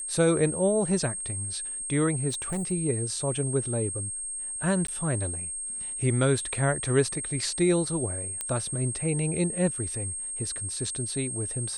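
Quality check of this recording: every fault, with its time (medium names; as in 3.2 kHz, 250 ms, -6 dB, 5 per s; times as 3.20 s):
whine 8.5 kHz -32 dBFS
2.29–2.72 s: clipped -26.5 dBFS
4.87–4.88 s: dropout 13 ms
8.41 s: pop -15 dBFS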